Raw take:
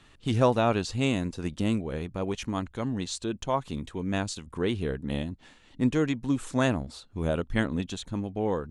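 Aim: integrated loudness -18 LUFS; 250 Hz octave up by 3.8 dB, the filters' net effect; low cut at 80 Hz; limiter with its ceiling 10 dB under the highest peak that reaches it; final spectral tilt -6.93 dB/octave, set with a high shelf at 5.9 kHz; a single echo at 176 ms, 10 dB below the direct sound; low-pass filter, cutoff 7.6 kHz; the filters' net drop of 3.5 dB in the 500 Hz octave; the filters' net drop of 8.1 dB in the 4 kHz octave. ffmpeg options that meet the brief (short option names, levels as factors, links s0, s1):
-af "highpass=80,lowpass=7600,equalizer=f=250:t=o:g=6,equalizer=f=500:t=o:g=-6,equalizer=f=4000:t=o:g=-8,highshelf=f=5900:g=-7,alimiter=limit=0.0944:level=0:latency=1,aecho=1:1:176:0.316,volume=4.47"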